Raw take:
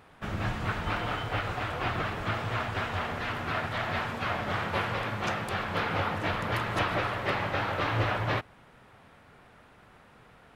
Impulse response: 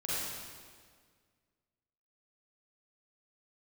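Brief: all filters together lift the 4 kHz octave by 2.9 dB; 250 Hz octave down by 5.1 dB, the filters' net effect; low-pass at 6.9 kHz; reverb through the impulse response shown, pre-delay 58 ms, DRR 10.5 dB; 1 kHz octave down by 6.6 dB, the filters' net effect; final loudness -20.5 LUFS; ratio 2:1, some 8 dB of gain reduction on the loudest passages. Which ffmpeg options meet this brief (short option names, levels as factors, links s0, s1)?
-filter_complex "[0:a]lowpass=6900,equalizer=f=250:t=o:g=-7,equalizer=f=1000:t=o:g=-9,equalizer=f=4000:t=o:g=5,acompressor=threshold=0.01:ratio=2,asplit=2[s0][s1];[1:a]atrim=start_sample=2205,adelay=58[s2];[s1][s2]afir=irnorm=-1:irlink=0,volume=0.158[s3];[s0][s3]amix=inputs=2:normalize=0,volume=7.94"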